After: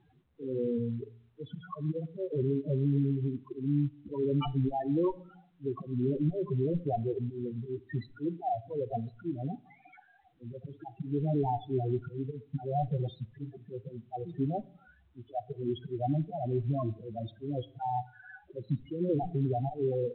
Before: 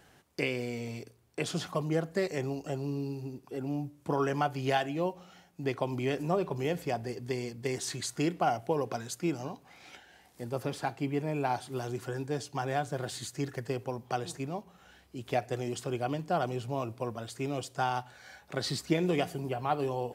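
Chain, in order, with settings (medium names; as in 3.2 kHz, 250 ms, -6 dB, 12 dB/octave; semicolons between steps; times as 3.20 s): 2.42–3.27 s: elliptic band-stop 650–2200 Hz, stop band 40 dB; slow attack 259 ms; Chebyshev shaper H 3 -6 dB, 5 -39 dB, 6 -17 dB, 7 -23 dB, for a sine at -16 dBFS; in parallel at 0 dB: compression 16:1, threshold -45 dBFS, peak gain reduction 18 dB; on the sum: waveshaping leveller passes 2; loudest bins only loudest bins 4; level-controlled noise filter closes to 1.1 kHz, open at -25 dBFS; on a send at -19.5 dB: reverberation RT60 0.50 s, pre-delay 4 ms; on the sum: µ-law 64 kbps 8 kHz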